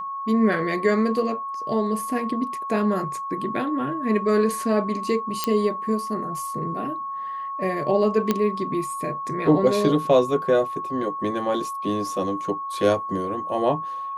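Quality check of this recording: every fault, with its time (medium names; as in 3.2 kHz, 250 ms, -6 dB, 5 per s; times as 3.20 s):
whine 1.1 kHz -28 dBFS
5.44 s: pop -7 dBFS
8.31 s: pop -7 dBFS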